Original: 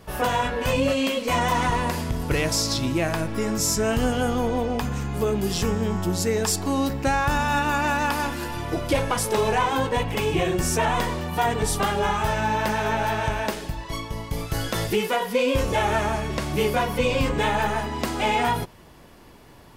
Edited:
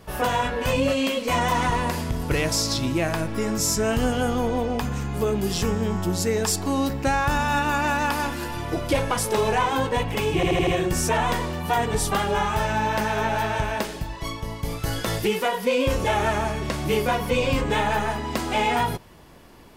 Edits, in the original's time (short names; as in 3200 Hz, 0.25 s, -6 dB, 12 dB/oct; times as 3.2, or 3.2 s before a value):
10.35 stutter 0.08 s, 5 plays